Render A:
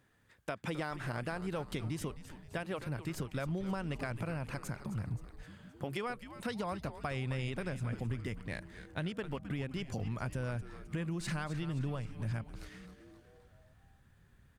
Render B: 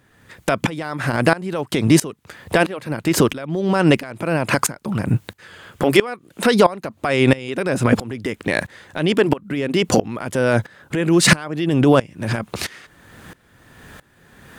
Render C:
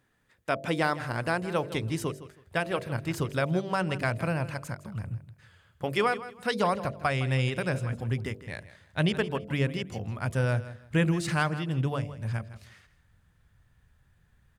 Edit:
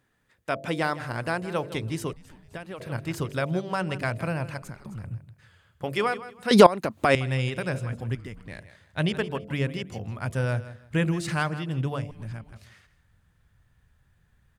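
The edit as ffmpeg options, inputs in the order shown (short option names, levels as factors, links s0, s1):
-filter_complex "[0:a]asplit=4[s0][s1][s2][s3];[2:a]asplit=6[s4][s5][s6][s7][s8][s9];[s4]atrim=end=2.132[s10];[s0]atrim=start=2.128:end=2.802[s11];[s5]atrim=start=2.798:end=4.622[s12];[s1]atrim=start=4.618:end=5.042[s13];[s6]atrim=start=5.038:end=6.512[s14];[1:a]atrim=start=6.508:end=7.152[s15];[s7]atrim=start=7.148:end=8.152[s16];[s2]atrim=start=8.148:end=8.592[s17];[s8]atrim=start=8.588:end=12.112[s18];[s3]atrim=start=12.108:end=12.522[s19];[s9]atrim=start=12.518[s20];[s10][s11]acrossfade=d=0.004:c1=hsin:c2=hsin[s21];[s21][s12]acrossfade=d=0.004:c1=hsin:c2=hsin[s22];[s22][s13]acrossfade=d=0.004:c1=hsin:c2=hsin[s23];[s23][s14]acrossfade=d=0.004:c1=hsin:c2=hsin[s24];[s24][s15]acrossfade=d=0.004:c1=hsin:c2=hsin[s25];[s25][s16]acrossfade=d=0.004:c1=hsin:c2=hsin[s26];[s26][s17]acrossfade=d=0.004:c1=hsin:c2=hsin[s27];[s27][s18]acrossfade=d=0.004:c1=hsin:c2=hsin[s28];[s28][s19]acrossfade=d=0.004:c1=hsin:c2=hsin[s29];[s29][s20]acrossfade=d=0.004:c1=hsin:c2=hsin"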